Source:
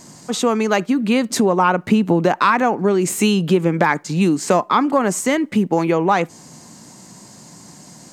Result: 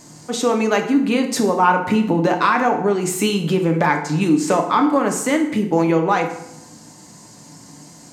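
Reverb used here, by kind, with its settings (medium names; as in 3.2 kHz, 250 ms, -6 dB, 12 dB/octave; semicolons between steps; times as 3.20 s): FDN reverb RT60 0.79 s, low-frequency decay 1×, high-frequency decay 0.75×, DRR 3 dB; trim -2.5 dB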